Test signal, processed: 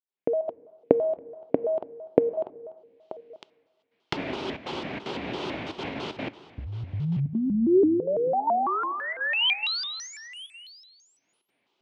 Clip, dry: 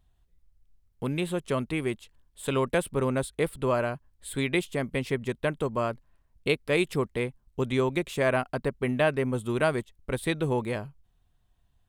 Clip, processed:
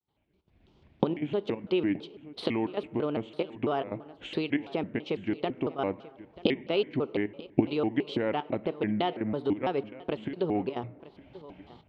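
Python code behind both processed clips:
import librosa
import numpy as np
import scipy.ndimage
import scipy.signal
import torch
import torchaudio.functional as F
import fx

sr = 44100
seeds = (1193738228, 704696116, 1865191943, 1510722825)

p1 = fx.recorder_agc(x, sr, target_db=-15.0, rise_db_per_s=45.0, max_gain_db=30)
p2 = fx.low_shelf(p1, sr, hz=280.0, db=7.5)
p3 = fx.level_steps(p2, sr, step_db=13)
p4 = p2 + (p3 * librosa.db_to_amplitude(-2.5))
p5 = fx.step_gate(p4, sr, bpm=184, pattern='.xxxx.xxxxxxxx', floor_db=-12.0, edge_ms=4.5)
p6 = fx.cabinet(p5, sr, low_hz=210.0, low_slope=12, high_hz=3800.0, hz=(330.0, 770.0, 1500.0, 2700.0), db=(9, 6, -7, 6))
p7 = p6 + fx.echo_single(p6, sr, ms=927, db=-18.5, dry=0)
p8 = fx.rev_plate(p7, sr, seeds[0], rt60_s=1.6, hf_ratio=0.5, predelay_ms=0, drr_db=17.0)
p9 = fx.vibrato_shape(p8, sr, shape='square', rate_hz=3.0, depth_cents=250.0)
y = p9 * librosa.db_to_amplitude(-11.5)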